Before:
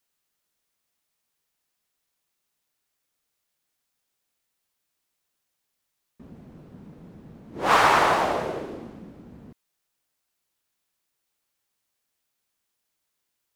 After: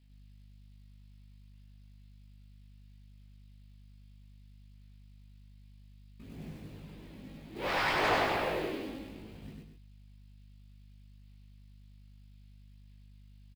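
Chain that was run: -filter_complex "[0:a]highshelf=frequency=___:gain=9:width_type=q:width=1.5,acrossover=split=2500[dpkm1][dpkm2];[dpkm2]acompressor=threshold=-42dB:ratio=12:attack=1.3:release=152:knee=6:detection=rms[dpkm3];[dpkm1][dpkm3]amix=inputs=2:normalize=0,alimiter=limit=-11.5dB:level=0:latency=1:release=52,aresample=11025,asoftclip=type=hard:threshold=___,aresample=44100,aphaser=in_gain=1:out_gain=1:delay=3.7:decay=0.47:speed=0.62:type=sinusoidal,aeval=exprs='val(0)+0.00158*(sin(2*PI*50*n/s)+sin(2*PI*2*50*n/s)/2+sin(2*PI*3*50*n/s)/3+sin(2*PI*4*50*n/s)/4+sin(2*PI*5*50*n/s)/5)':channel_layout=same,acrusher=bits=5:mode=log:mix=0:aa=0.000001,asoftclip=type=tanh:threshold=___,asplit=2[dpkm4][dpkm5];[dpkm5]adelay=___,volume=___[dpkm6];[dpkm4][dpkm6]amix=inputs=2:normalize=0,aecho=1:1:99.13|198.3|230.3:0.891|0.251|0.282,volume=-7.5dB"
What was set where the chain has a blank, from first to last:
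1.8k, -23.5dB, -20.5dB, 19, -4dB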